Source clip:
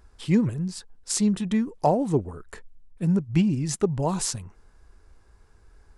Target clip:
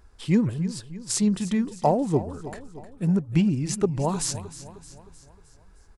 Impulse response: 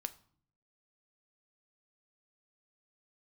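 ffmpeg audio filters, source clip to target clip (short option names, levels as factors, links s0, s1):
-af "aecho=1:1:309|618|927|1236|1545:0.178|0.0925|0.0481|0.025|0.013"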